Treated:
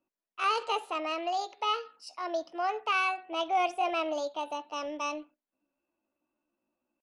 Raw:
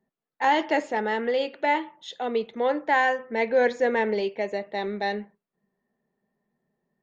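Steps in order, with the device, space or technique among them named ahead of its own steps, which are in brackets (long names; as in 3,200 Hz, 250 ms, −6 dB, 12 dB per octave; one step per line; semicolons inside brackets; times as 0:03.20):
chipmunk voice (pitch shifter +6.5 semitones)
level −6.5 dB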